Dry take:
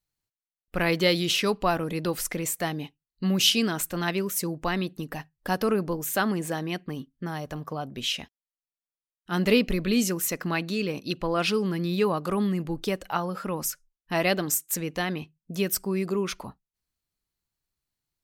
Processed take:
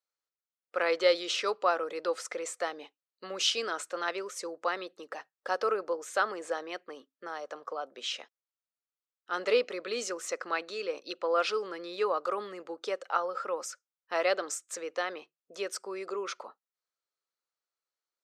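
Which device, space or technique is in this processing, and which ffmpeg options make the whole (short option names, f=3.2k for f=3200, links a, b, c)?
phone speaker on a table: -af "highpass=f=400:w=0.5412,highpass=f=400:w=1.3066,equalizer=f=520:t=q:w=4:g=8,equalizer=f=1.3k:t=q:w=4:g=9,equalizer=f=2.8k:t=q:w=4:g=-3,lowpass=f=7.7k:w=0.5412,lowpass=f=7.7k:w=1.3066,volume=-5.5dB"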